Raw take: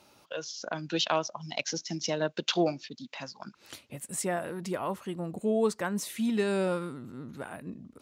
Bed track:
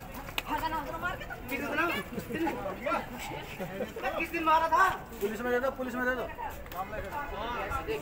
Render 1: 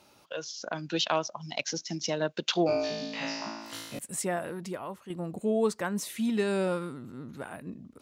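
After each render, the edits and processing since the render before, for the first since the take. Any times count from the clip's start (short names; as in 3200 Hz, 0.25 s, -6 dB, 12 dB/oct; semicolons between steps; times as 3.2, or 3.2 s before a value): 2.67–3.99 flutter echo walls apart 3.1 m, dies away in 1.2 s; 4.54–5.1 fade out quadratic, to -8 dB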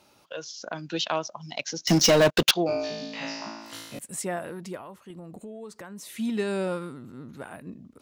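1.87–2.51 sample leveller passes 5; 4.8–6.14 compressor, threshold -38 dBFS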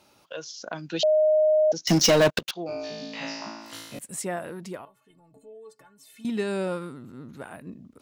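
1.03–1.72 bleep 618 Hz -16.5 dBFS; 2.39–3.13 fade in, from -21 dB; 4.85–6.25 metallic resonator 130 Hz, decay 0.25 s, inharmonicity 0.03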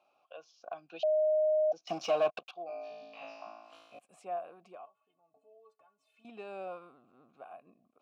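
vowel filter a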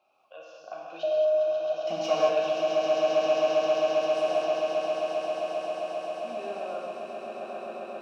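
swelling echo 0.133 s, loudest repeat 8, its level -6.5 dB; non-linear reverb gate 0.25 s flat, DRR -3.5 dB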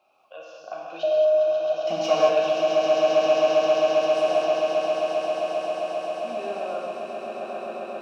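gain +4.5 dB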